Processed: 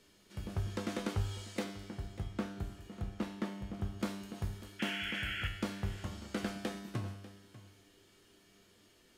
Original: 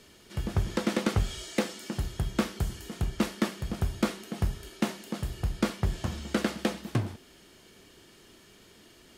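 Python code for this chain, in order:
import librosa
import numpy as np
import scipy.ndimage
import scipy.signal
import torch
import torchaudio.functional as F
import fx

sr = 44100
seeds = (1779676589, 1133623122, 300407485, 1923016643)

y = fx.high_shelf(x, sr, hz=3700.0, db=-11.0, at=(1.64, 4.0))
y = fx.spec_paint(y, sr, seeds[0], shape='noise', start_s=4.79, length_s=0.69, low_hz=1300.0, high_hz=3400.0, level_db=-30.0)
y = fx.comb_fb(y, sr, f0_hz=99.0, decay_s=0.97, harmonics='all', damping=0.0, mix_pct=80)
y = y + 10.0 ** (-17.0 / 20.0) * np.pad(y, (int(594 * sr / 1000.0), 0))[:len(y)]
y = y * librosa.db_to_amplitude(1.5)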